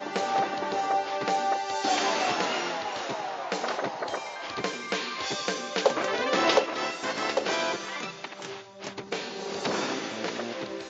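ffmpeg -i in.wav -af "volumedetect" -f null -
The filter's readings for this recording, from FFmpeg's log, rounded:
mean_volume: -29.6 dB
max_volume: -11.4 dB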